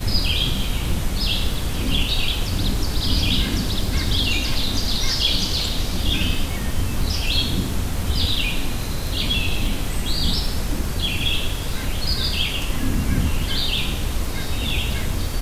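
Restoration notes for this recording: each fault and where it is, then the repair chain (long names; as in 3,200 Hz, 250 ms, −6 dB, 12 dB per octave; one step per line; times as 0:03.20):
surface crackle 42 per second −28 dBFS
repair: click removal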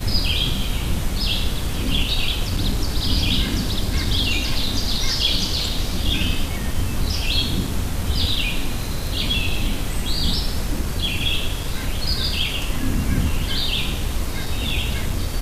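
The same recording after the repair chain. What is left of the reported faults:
none of them is left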